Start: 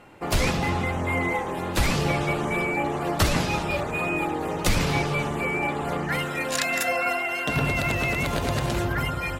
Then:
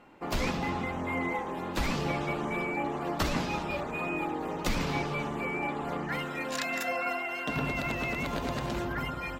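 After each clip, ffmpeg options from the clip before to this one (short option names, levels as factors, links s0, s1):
-af "equalizer=f=100:t=o:w=0.67:g=-7,equalizer=f=250:t=o:w=0.67:g=5,equalizer=f=1000:t=o:w=0.67:g=3,equalizer=f=10000:t=o:w=0.67:g=-9,volume=0.422"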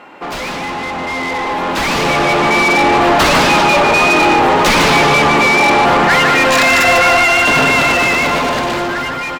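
-filter_complex "[0:a]aecho=1:1:149:0.447,asplit=2[s0][s1];[s1]highpass=f=720:p=1,volume=25.1,asoftclip=type=tanh:threshold=0.178[s2];[s0][s2]amix=inputs=2:normalize=0,lowpass=f=3800:p=1,volume=0.501,dynaudnorm=f=450:g=9:m=4.73"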